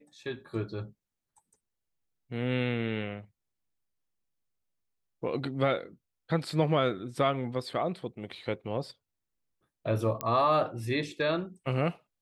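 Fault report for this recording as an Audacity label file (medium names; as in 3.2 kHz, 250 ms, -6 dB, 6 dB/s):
10.210000	10.210000	pop -15 dBFS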